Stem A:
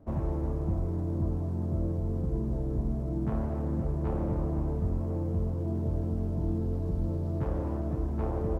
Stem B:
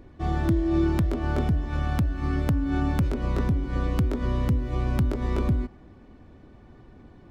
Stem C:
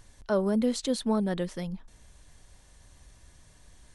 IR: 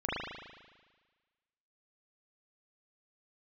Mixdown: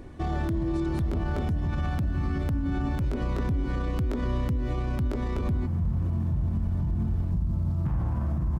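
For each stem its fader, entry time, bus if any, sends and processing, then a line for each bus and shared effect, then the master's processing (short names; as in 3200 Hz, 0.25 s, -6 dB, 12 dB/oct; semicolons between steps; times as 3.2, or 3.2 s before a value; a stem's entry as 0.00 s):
+3.0 dB, 0.45 s, muted 3.08–5.35, send -6.5 dB, EQ curve 180 Hz 0 dB, 420 Hz -21 dB, 950 Hz -6 dB
+3.0 dB, 0.00 s, no send, dry
-13.5 dB, 0.00 s, no send, dry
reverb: on, RT60 1.4 s, pre-delay 37 ms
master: vocal rider 0.5 s; limiter -20.5 dBFS, peak gain reduction 10.5 dB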